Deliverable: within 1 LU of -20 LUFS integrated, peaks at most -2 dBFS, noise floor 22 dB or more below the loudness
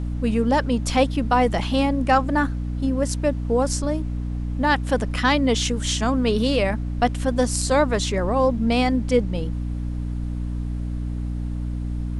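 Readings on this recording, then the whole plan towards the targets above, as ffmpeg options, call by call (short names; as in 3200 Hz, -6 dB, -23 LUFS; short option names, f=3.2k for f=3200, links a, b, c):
hum 60 Hz; harmonics up to 300 Hz; hum level -24 dBFS; noise floor -27 dBFS; noise floor target -45 dBFS; loudness -22.5 LUFS; peak -6.0 dBFS; loudness target -20.0 LUFS
-> -af "bandreject=f=60:t=h:w=6,bandreject=f=120:t=h:w=6,bandreject=f=180:t=h:w=6,bandreject=f=240:t=h:w=6,bandreject=f=300:t=h:w=6"
-af "afftdn=nr=18:nf=-27"
-af "volume=2.5dB"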